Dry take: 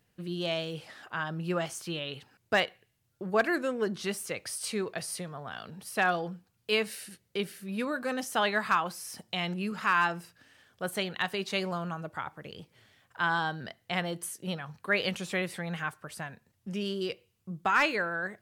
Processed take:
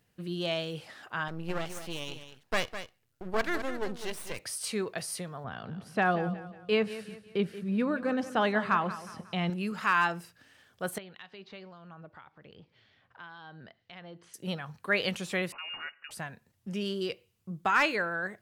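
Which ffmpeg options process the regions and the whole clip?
ffmpeg -i in.wav -filter_complex "[0:a]asettb=1/sr,asplit=3[link_01][link_02][link_03];[link_01]atrim=end=1.284[link_04];[link_02]atrim=start=1.28:end=4.39,asetpts=PTS-STARTPTS,afade=type=in:duration=0.004:curve=qsin,afade=type=out:start_time=3.106:duration=0.004:curve=qsin,aeval=exprs='max(val(0),0)':channel_layout=same,aecho=1:1:206:0.299,atrim=end_sample=137151[link_05];[link_03]atrim=start=4.386[link_06];[link_04][link_05]acrossfade=duration=0.004:curve1=hsin:curve2=qsin[link_07];[link_07][link_06]acrossfade=duration=0.004:curve1=qsin:curve2=hsin,asettb=1/sr,asplit=3[link_08][link_09][link_10];[link_08]atrim=end=5.444[link_11];[link_09]atrim=start=5.44:end=9.5,asetpts=PTS-STARTPTS,afade=type=in:duration=0.004:curve=qsin,afade=type=out:start_time=4.056:duration=0.004:curve=qsin,highpass=frequency=170:poles=1,aemphasis=mode=reproduction:type=riaa,aecho=1:1:181|362|543|724:0.2|0.0798|0.0319|0.0128,atrim=end_sample=179046[link_12];[link_10]atrim=start=9.496[link_13];[link_11][link_12]acrossfade=duration=0.004:curve1=hsin:curve2=qsin[link_14];[link_14][link_13]acrossfade=duration=0.004:curve1=qsin:curve2=hsin,asettb=1/sr,asplit=3[link_15][link_16][link_17];[link_15]atrim=end=10.984[link_18];[link_16]atrim=start=10.98:end=14.34,asetpts=PTS-STARTPTS,afade=type=in:duration=0.004:curve=qsin,afade=type=out:start_time=3.356:duration=0.004:curve=qsin,lowpass=frequency=4700:width=0.5412,lowpass=frequency=4700:width=1.3066,acompressor=threshold=-52dB:ratio=2:attack=3.2:release=140:knee=1:detection=peak,acrossover=split=2200[link_19][link_20];[link_19]aeval=exprs='val(0)*(1-0.5/2+0.5/2*cos(2*PI*1.9*n/s))':channel_layout=same[link_21];[link_20]aeval=exprs='val(0)*(1-0.5/2-0.5/2*cos(2*PI*1.9*n/s))':channel_layout=same[link_22];[link_21][link_22]amix=inputs=2:normalize=0[link_23];[link_17]atrim=start=14.336[link_24];[link_18][link_23]acrossfade=duration=0.004:curve1=hsin:curve2=qsin[link_25];[link_25][link_24]acrossfade=duration=0.004:curve1=qsin:curve2=hsin,asettb=1/sr,asplit=3[link_26][link_27][link_28];[link_26]atrim=end=15.524[link_29];[link_27]atrim=start=15.52:end=16.11,asetpts=PTS-STARTPTS,afade=type=in:duration=0.004:curve=qsin,afade=type=out:start_time=0.586:duration=0.004:curve=qsin,lowpass=frequency=2600:width_type=q:width=0.5098,lowpass=frequency=2600:width_type=q:width=0.6013,lowpass=frequency=2600:width_type=q:width=0.9,lowpass=frequency=2600:width_type=q:width=2.563,afreqshift=-3000,acompressor=threshold=-45dB:ratio=1.5:attack=3.2:release=140:knee=1:detection=peak[link_30];[link_28]atrim=start=16.106[link_31];[link_29][link_30]acrossfade=duration=0.004:curve1=hsin:curve2=qsin[link_32];[link_32][link_31]acrossfade=duration=0.004:curve1=qsin:curve2=hsin" out.wav

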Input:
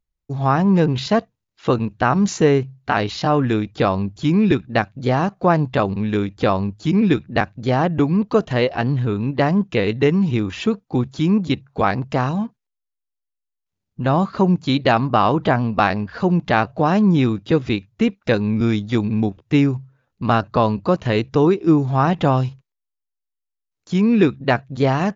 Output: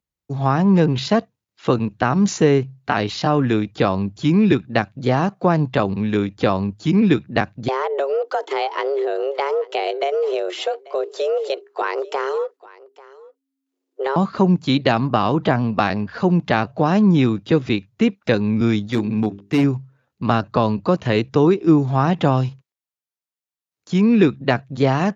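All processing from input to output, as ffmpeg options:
ffmpeg -i in.wav -filter_complex "[0:a]asettb=1/sr,asplit=3[link_01][link_02][link_03];[link_01]atrim=end=7.684[link_04];[link_02]atrim=start=7.68:end=14.16,asetpts=PTS-STARTPTS,afade=type=in:duration=0.004:curve=qsin,afade=type=out:start_time=6.476:duration=0.004:curve=qsin,afreqshift=270,acompressor=threshold=-19dB:ratio=3:attack=3.2:release=140:knee=1:detection=peak,aecho=1:1:840:0.0841,atrim=end_sample=285768[link_05];[link_03]atrim=start=14.156[link_06];[link_04][link_05]acrossfade=duration=0.004:curve1=hsin:curve2=qsin[link_07];[link_07][link_06]acrossfade=duration=0.004:curve1=qsin:curve2=hsin,asettb=1/sr,asplit=3[link_08][link_09][link_10];[link_08]atrim=end=18.874[link_11];[link_09]atrim=start=18.87:end=19.64,asetpts=PTS-STARTPTS,afade=type=in:duration=0.004:curve=qsin,afade=type=out:start_time=0.766:duration=0.004:curve=qsin,lowshelf=frequency=100:gain=-4,bandreject=frequency=50:width_type=h:width=6,bandreject=frequency=100:width_type=h:width=6,bandreject=frequency=150:width_type=h:width=6,bandreject=frequency=200:width_type=h:width=6,bandreject=frequency=250:width_type=h:width=6,bandreject=frequency=300:width_type=h:width=6,bandreject=frequency=350:width_type=h:width=6,bandreject=frequency=400:width_type=h:width=6,asoftclip=type=hard:threshold=-13dB[link_12];[link_10]atrim=start=19.636[link_13];[link_11][link_12]acrossfade=duration=0.004:curve1=hsin:curve2=qsin[link_14];[link_14][link_13]acrossfade=duration=0.004:curve1=qsin:curve2=hsin,highpass=96,acrossover=split=360|3000[link_15][link_16][link_17];[link_16]acompressor=threshold=-16dB:ratio=6[link_18];[link_15][link_18][link_17]amix=inputs=3:normalize=0,volume=1dB" out.wav

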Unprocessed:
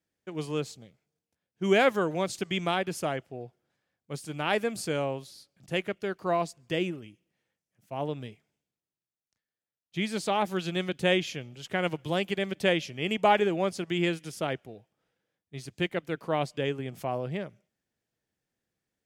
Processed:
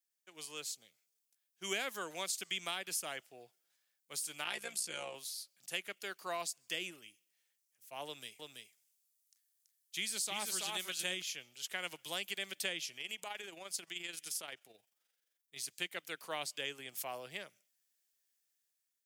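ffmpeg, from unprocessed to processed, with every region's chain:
ffmpeg -i in.wav -filter_complex "[0:a]asettb=1/sr,asplit=3[link_01][link_02][link_03];[link_01]atrim=end=4.444[link_04];[link_02]atrim=start=4.44:end=5.15,asetpts=PTS-STARTPTS,afade=type=in:duration=0.004:curve=qsin,afade=type=out:start_time=0.706:duration=0.004:curve=qsin,lowpass=frequency=12000:width=0.5412,lowpass=frequency=12000:width=1.3066,tremolo=f=60:d=0.857,aecho=1:1:5.7:0.64,atrim=end_sample=31311[link_05];[link_03]atrim=start=5.146[link_06];[link_04][link_05]acrossfade=duration=0.004:curve1=hsin:curve2=qsin[link_07];[link_07][link_06]acrossfade=duration=0.004:curve1=qsin:curve2=hsin,asettb=1/sr,asplit=3[link_08][link_09][link_10];[link_08]atrim=end=8.064[link_11];[link_09]atrim=start=8.06:end=11.22,asetpts=PTS-STARTPTS,afade=type=in:duration=0.004:curve=qsin,afade=type=out:start_time=3.156:duration=0.004:curve=qsin,equalizer=frequency=9800:width=0.48:gain=6,aecho=1:1:331:0.668,atrim=end_sample=139356[link_12];[link_10]atrim=start=11.216[link_13];[link_11][link_12]acrossfade=duration=0.004:curve1=hsin:curve2=qsin[link_14];[link_14][link_13]acrossfade=duration=0.004:curve1=qsin:curve2=hsin,asettb=1/sr,asplit=3[link_15][link_16][link_17];[link_15]atrim=end=12.974[link_18];[link_16]atrim=start=12.97:end=15.56,asetpts=PTS-STARTPTS,afade=type=in:duration=0.004:curve=qsin,afade=type=out:start_time=2.586:duration=0.004:curve=qsin,tremolo=f=23:d=0.519,acompressor=threshold=-33dB:ratio=4:attack=3.2:release=140:knee=1:detection=peak[link_19];[link_17]atrim=start=15.556[link_20];[link_18][link_19]acrossfade=duration=0.004:curve1=hsin:curve2=qsin[link_21];[link_21][link_20]acrossfade=duration=0.004:curve1=qsin:curve2=hsin,dynaudnorm=framelen=290:gausssize=5:maxgain=7dB,aderivative,acrossover=split=340[link_22][link_23];[link_23]acompressor=threshold=-36dB:ratio=6[link_24];[link_22][link_24]amix=inputs=2:normalize=0,volume=1.5dB" out.wav

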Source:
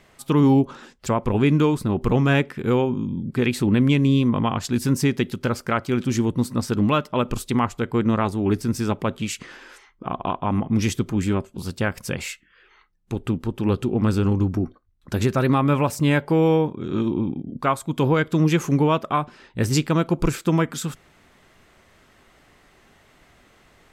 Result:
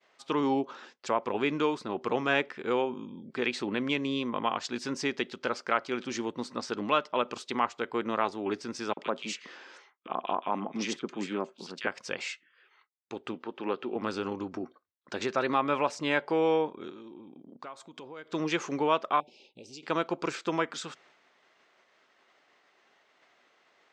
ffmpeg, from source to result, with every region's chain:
ffmpeg -i in.wav -filter_complex "[0:a]asettb=1/sr,asplit=3[link_01][link_02][link_03];[link_01]atrim=end=8.934[link_04];[link_02]atrim=start=8.93:end=11.87,asetpts=PTS-STARTPTS,afade=type=in:duration=0.004:curve=qsin,afade=type=out:start_time=2.936:duration=0.004:curve=qsin,lowshelf=frequency=120:width_type=q:width=1.5:gain=-12.5,acrossover=split=1700[link_05][link_06];[link_05]adelay=40[link_07];[link_07][link_06]amix=inputs=2:normalize=0,atrim=end_sample=129654[link_08];[link_03]atrim=start=11.866[link_09];[link_04][link_08]acrossfade=duration=0.004:curve1=hsin:curve2=qsin[link_10];[link_10][link_09]acrossfade=duration=0.004:curve1=qsin:curve2=hsin,asettb=1/sr,asplit=3[link_11][link_12][link_13];[link_11]atrim=end=13.344[link_14];[link_12]atrim=start=13.34:end=13.96,asetpts=PTS-STARTPTS,afade=type=in:duration=0.004:curve=qsin,afade=type=out:start_time=0.616:duration=0.004:curve=qsin,acrossover=split=2800[link_15][link_16];[link_16]acompressor=threshold=-57dB:ratio=4:attack=1:release=60[link_17];[link_15][link_17]amix=inputs=2:normalize=0,highpass=180,lowpass=4000,highshelf=frequency=2800:gain=8.5[link_18];[link_13]atrim=start=13.956[link_19];[link_14][link_18]acrossfade=duration=0.004:curve1=hsin:curve2=qsin[link_20];[link_20][link_19]acrossfade=duration=0.004:curve1=qsin:curve2=hsin,asettb=1/sr,asplit=3[link_21][link_22][link_23];[link_21]atrim=end=16.894[link_24];[link_22]atrim=start=16.89:end=18.33,asetpts=PTS-STARTPTS,afade=type=in:duration=0.004:curve=qsin,afade=type=out:start_time=1.436:duration=0.004:curve=qsin,acompressor=threshold=-30dB:ratio=12:attack=3.2:release=140:knee=1:detection=peak,equalizer=frequency=1600:width_type=o:width=2.7:gain=-3.5[link_25];[link_23]atrim=start=18.326[link_26];[link_24][link_25]acrossfade=duration=0.004:curve1=hsin:curve2=qsin[link_27];[link_27][link_26]acrossfade=duration=0.004:curve1=qsin:curve2=hsin,asettb=1/sr,asplit=3[link_28][link_29][link_30];[link_28]atrim=end=19.204[link_31];[link_29]atrim=start=19.2:end=19.83,asetpts=PTS-STARTPTS,afade=type=in:duration=0.004:curve=qsin,afade=type=out:start_time=0.626:duration=0.004:curve=qsin,equalizer=frequency=700:width=5.3:gain=-9.5,acompressor=threshold=-30dB:ratio=20:attack=3.2:release=140:knee=1:detection=peak,asuperstop=centerf=1400:order=12:qfactor=0.9[link_32];[link_30]atrim=start=19.826[link_33];[link_31][link_32]acrossfade=duration=0.004:curve1=hsin:curve2=qsin[link_34];[link_34][link_33]acrossfade=duration=0.004:curve1=qsin:curve2=hsin,lowpass=frequency=6100:width=0.5412,lowpass=frequency=6100:width=1.3066,agate=range=-33dB:threshold=-50dB:ratio=3:detection=peak,highpass=450,volume=-3.5dB" out.wav

